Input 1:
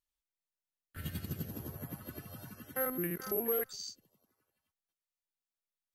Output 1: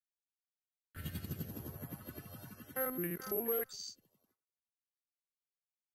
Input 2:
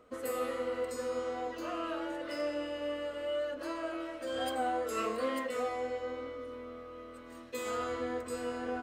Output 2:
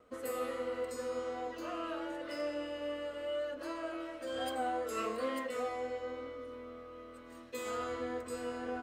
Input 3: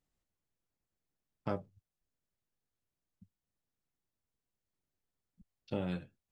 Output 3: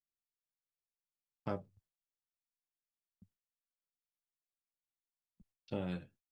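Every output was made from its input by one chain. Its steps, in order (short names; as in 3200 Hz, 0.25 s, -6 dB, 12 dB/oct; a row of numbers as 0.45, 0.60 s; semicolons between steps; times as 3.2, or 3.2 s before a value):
gate with hold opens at -59 dBFS; gain -2.5 dB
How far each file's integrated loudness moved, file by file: -2.5, -2.5, -2.5 LU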